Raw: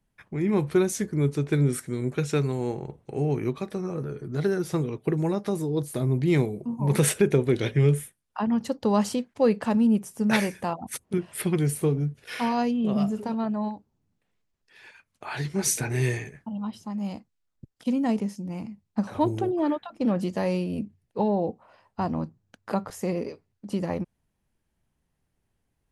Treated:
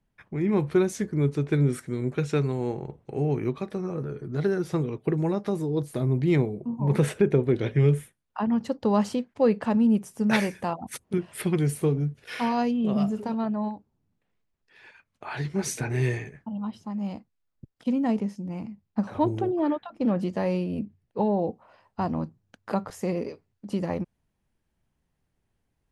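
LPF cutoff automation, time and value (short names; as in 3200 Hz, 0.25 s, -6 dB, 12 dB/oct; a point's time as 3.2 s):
LPF 6 dB/oct
3700 Hz
from 6.36 s 1500 Hz
from 7.71 s 3300 Hz
from 9.9 s 6600 Hz
from 13.49 s 3000 Hz
from 21.39 s 7000 Hz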